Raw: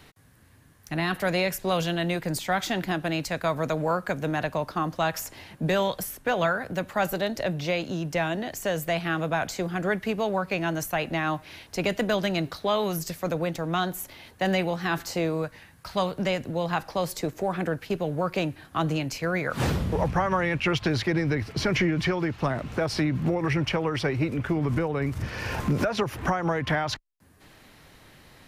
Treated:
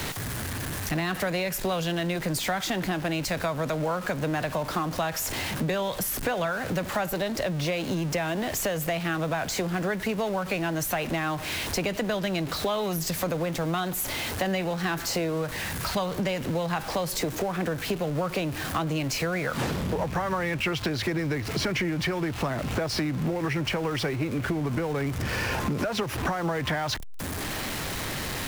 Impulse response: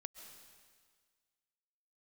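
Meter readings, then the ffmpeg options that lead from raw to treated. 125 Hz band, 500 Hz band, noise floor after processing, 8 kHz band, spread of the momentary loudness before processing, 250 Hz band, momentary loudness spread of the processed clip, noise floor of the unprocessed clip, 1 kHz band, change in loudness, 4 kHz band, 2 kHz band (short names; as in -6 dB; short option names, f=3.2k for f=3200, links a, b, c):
-1.0 dB, -1.5 dB, -34 dBFS, +5.5 dB, 5 LU, -1.0 dB, 2 LU, -55 dBFS, -1.5 dB, -1.0 dB, +1.5 dB, -0.5 dB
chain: -filter_complex "[0:a]aeval=exprs='val(0)+0.5*0.0251*sgn(val(0))':c=same,acrossover=split=150|2400[a][b][c];[a]alimiter=level_in=7.5dB:limit=-24dB:level=0:latency=1,volume=-7.5dB[d];[d][b][c]amix=inputs=3:normalize=0,acompressor=threshold=-30dB:ratio=6,volume=5dB"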